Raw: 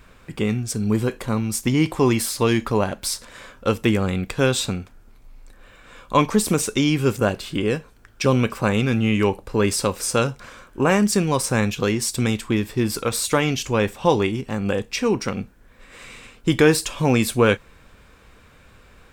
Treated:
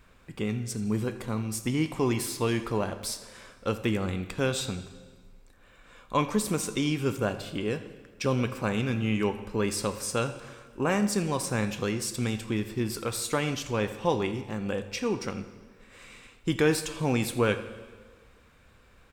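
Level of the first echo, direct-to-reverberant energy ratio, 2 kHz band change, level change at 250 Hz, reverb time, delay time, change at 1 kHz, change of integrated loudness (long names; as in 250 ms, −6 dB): −18.5 dB, 10.5 dB, −8.0 dB, −8.0 dB, 1.5 s, 83 ms, −8.0 dB, −8.0 dB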